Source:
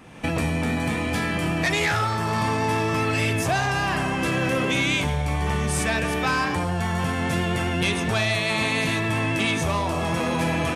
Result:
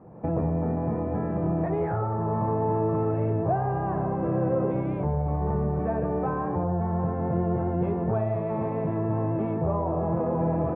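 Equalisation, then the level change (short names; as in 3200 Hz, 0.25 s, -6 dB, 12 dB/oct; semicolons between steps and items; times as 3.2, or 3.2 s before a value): HPF 170 Hz 6 dB/oct; Bessel low-pass 570 Hz, order 4; bell 260 Hz -11 dB 0.36 oct; +4.5 dB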